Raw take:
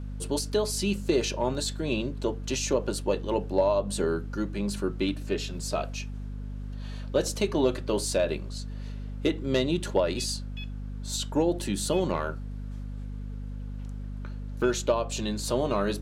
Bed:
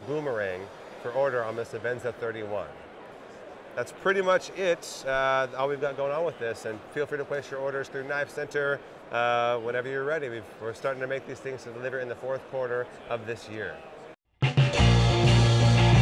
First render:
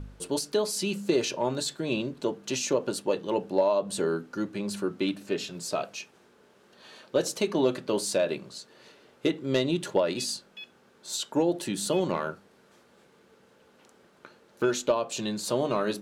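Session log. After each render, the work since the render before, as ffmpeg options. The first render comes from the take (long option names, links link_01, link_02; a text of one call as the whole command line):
ffmpeg -i in.wav -af "bandreject=frequency=50:width_type=h:width=4,bandreject=frequency=100:width_type=h:width=4,bandreject=frequency=150:width_type=h:width=4,bandreject=frequency=200:width_type=h:width=4,bandreject=frequency=250:width_type=h:width=4" out.wav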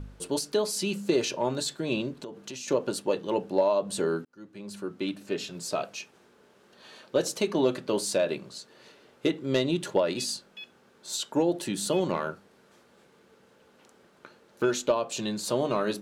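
ffmpeg -i in.wav -filter_complex "[0:a]asettb=1/sr,asplit=3[link_01][link_02][link_03];[link_01]atrim=end=2.164[link_04];[link_02]atrim=start=2.16:end=2.68,asetpts=PTS-STARTPTS,afade=type=in:duration=0.004:curve=qsin,afade=type=out:start_time=0.516:duration=0.004:curve=qsin,acompressor=threshold=-36dB:ratio=6:attack=3.2:release=140:knee=1:detection=peak[link_05];[link_03]atrim=start=2.676[link_06];[link_04][link_05]acrossfade=duration=0.004:curve1=hsin:curve2=qsin[link_07];[link_07][link_06]acrossfade=duration=0.004:curve1=qsin:curve2=hsin,asplit=2[link_08][link_09];[link_08]atrim=end=4.25,asetpts=PTS-STARTPTS,afade=type=out:start_time=4.246:duration=0.004:curve=hsin[link_10];[link_09]atrim=start=4.25,asetpts=PTS-STARTPTS,afade=type=in:duration=1.67:curve=qsin[link_11];[link_10][link_11]concat=n=2:v=0:a=1" out.wav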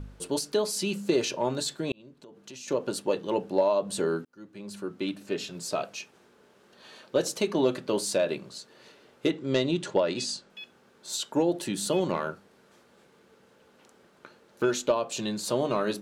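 ffmpeg -i in.wav -filter_complex "[0:a]asettb=1/sr,asplit=3[link_01][link_02][link_03];[link_01]atrim=end=9.314[link_04];[link_02]atrim=start=9.31:end=10.5,asetpts=PTS-STARTPTS,afade=type=in:duration=0.004:curve=qsin,afade=type=out:start_time=1.186:duration=0.004:curve=qsin,lowpass=frequency=8400:width=0.5412,lowpass=frequency=8400:width=1.3066[link_05];[link_03]atrim=start=10.496[link_06];[link_04][link_05]acrossfade=duration=0.004:curve1=hsin:curve2=qsin[link_07];[link_07][link_06]acrossfade=duration=0.004:curve1=qsin:curve2=hsin,asplit=2[link_08][link_09];[link_08]atrim=end=1.92,asetpts=PTS-STARTPTS,afade=type=out:start_time=1.916:duration=0.004:curve=hsin[link_10];[link_09]atrim=start=1.92,asetpts=PTS-STARTPTS,afade=type=in:duration=1.07[link_11];[link_10][link_11]concat=n=2:v=0:a=1" out.wav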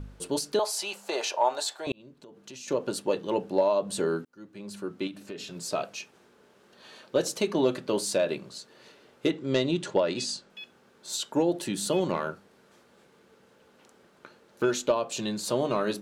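ffmpeg -i in.wav -filter_complex "[0:a]asettb=1/sr,asplit=3[link_01][link_02][link_03];[link_01]atrim=end=0.594[link_04];[link_02]atrim=start=0.59:end=1.87,asetpts=PTS-STARTPTS,afade=type=in:duration=0.004:curve=qsin,afade=type=out:start_time=1.276:duration=0.004:curve=qsin,highpass=frequency=760:width_type=q:width=3.2[link_05];[link_03]atrim=start=1.866[link_06];[link_04][link_05]acrossfade=duration=0.004:curve1=hsin:curve2=qsin[link_07];[link_07][link_06]acrossfade=duration=0.004:curve1=qsin:curve2=hsin,asettb=1/sr,asplit=3[link_08][link_09][link_10];[link_08]atrim=end=5.074[link_11];[link_09]atrim=start=5.07:end=5.56,asetpts=PTS-STARTPTS,afade=type=in:duration=0.004:curve=qsin,afade=type=out:start_time=0.486:duration=0.004:curve=qsin,acompressor=threshold=-35dB:ratio=5:attack=3.2:release=140:knee=1:detection=peak[link_12];[link_10]atrim=start=5.556[link_13];[link_11][link_12]acrossfade=duration=0.004:curve1=hsin:curve2=qsin[link_14];[link_14][link_13]acrossfade=duration=0.004:curve1=qsin:curve2=hsin" out.wav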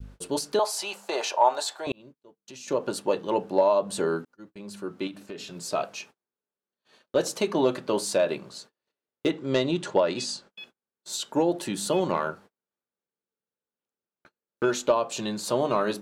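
ffmpeg -i in.wav -af "adynamicequalizer=threshold=0.00891:dfrequency=960:dqfactor=0.93:tfrequency=960:tqfactor=0.93:attack=5:release=100:ratio=0.375:range=2.5:mode=boostabove:tftype=bell,agate=range=-37dB:threshold=-47dB:ratio=16:detection=peak" out.wav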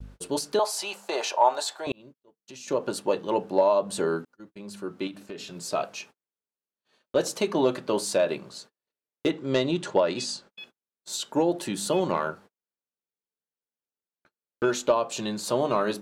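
ffmpeg -i in.wav -af "agate=range=-8dB:threshold=-50dB:ratio=16:detection=peak" out.wav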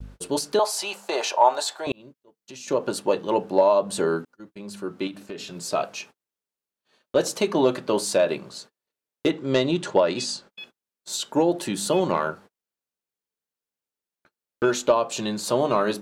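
ffmpeg -i in.wav -af "volume=3dB" out.wav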